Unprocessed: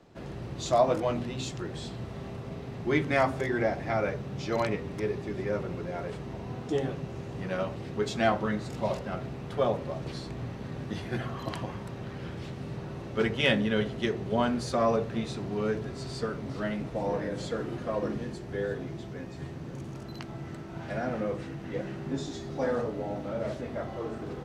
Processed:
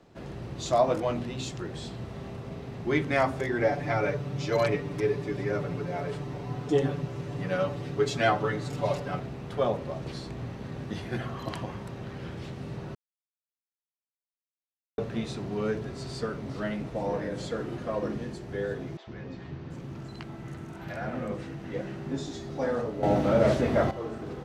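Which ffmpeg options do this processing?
ffmpeg -i in.wav -filter_complex "[0:a]asettb=1/sr,asplit=3[link_01][link_02][link_03];[link_01]atrim=end=3.624[link_04];[link_02]atrim=start=3.62:end=9.2,asetpts=PTS-STARTPTS,afade=type=in:duration=0.004:curve=qsin,afade=type=out:start_time=5.576:duration=0.004:curve=qsin,aecho=1:1:6.9:0.87,atrim=end_sample=246078[link_05];[link_03]atrim=start=9.196[link_06];[link_04][link_05]acrossfade=duration=0.004:curve1=hsin:curve2=qsin[link_07];[link_07][link_06]acrossfade=duration=0.004:curve1=qsin:curve2=hsin,asettb=1/sr,asplit=3[link_08][link_09][link_10];[link_08]atrim=end=18.974[link_11];[link_09]atrim=start=18.97:end=21.32,asetpts=PTS-STARTPTS,afade=type=in:duration=0.004:curve=qsin,afade=type=out:start_time=2.346:duration=0.004:curve=qsin,acrossover=split=530|5500[link_12][link_13][link_14];[link_12]adelay=100[link_15];[link_14]adelay=730[link_16];[link_15][link_13][link_16]amix=inputs=3:normalize=0,atrim=end_sample=103635[link_17];[link_10]atrim=start=21.316[link_18];[link_11][link_17]acrossfade=duration=0.004:curve1=hsin:curve2=qsin[link_19];[link_19][link_18]acrossfade=duration=0.004:curve1=qsin:curve2=hsin,asplit=5[link_20][link_21][link_22][link_23][link_24];[link_20]atrim=end=12.95,asetpts=PTS-STARTPTS,afade=type=out:start_time=12.946:duration=0.004:curve=hsin[link_25];[link_21]atrim=start=12.95:end=14.98,asetpts=PTS-STARTPTS,volume=0[link_26];[link_22]atrim=start=14.98:end=23.032,asetpts=PTS-STARTPTS,afade=type=in:duration=0.004:curve=hsin[link_27];[link_23]atrim=start=23.028:end=23.912,asetpts=PTS-STARTPTS,volume=11dB[link_28];[link_24]atrim=start=23.908[link_29];[link_25][link_26][link_27]concat=n=3:v=0:a=1[link_30];[link_30][link_28]acrossfade=duration=0.004:curve1=hsin:curve2=hsin[link_31];[link_31][link_29]acrossfade=duration=0.004:curve1=hsin:curve2=hsin" out.wav

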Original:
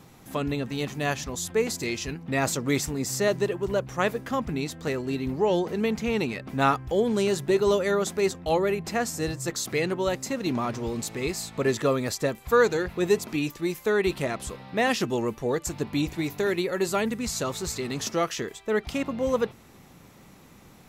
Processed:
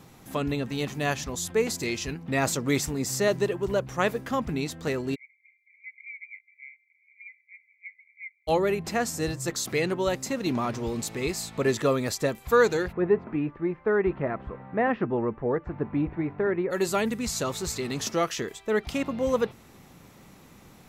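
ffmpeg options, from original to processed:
ffmpeg -i in.wav -filter_complex "[0:a]asplit=3[link_01][link_02][link_03];[link_01]afade=type=out:start_time=5.14:duration=0.02[link_04];[link_02]asuperpass=centerf=2200:order=12:qfactor=6.5,afade=type=in:start_time=5.14:duration=0.02,afade=type=out:start_time=8.47:duration=0.02[link_05];[link_03]afade=type=in:start_time=8.47:duration=0.02[link_06];[link_04][link_05][link_06]amix=inputs=3:normalize=0,asplit=3[link_07][link_08][link_09];[link_07]afade=type=out:start_time=12.91:duration=0.02[link_10];[link_08]lowpass=frequency=1800:width=0.5412,lowpass=frequency=1800:width=1.3066,afade=type=in:start_time=12.91:duration=0.02,afade=type=out:start_time=16.7:duration=0.02[link_11];[link_09]afade=type=in:start_time=16.7:duration=0.02[link_12];[link_10][link_11][link_12]amix=inputs=3:normalize=0" out.wav

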